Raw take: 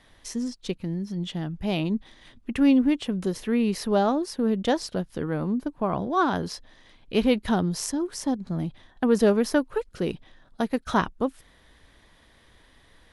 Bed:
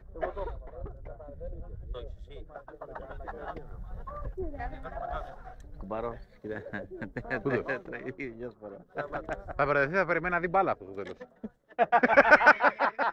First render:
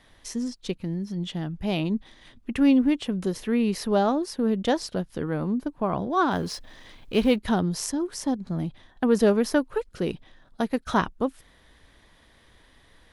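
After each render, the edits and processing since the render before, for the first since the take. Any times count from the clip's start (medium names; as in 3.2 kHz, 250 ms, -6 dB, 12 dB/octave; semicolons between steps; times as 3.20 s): 6.31–7.36 s: companding laws mixed up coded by mu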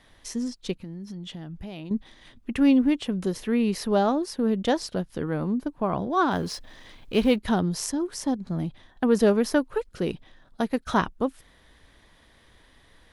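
0.77–1.91 s: compression, threshold -34 dBFS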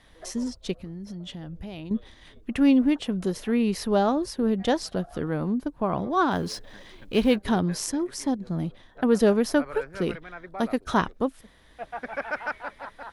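add bed -12.5 dB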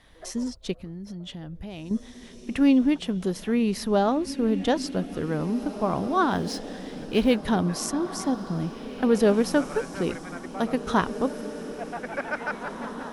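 echo that smears into a reverb 1968 ms, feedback 50%, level -12 dB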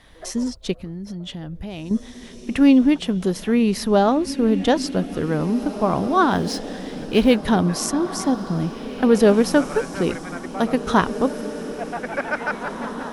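trim +5.5 dB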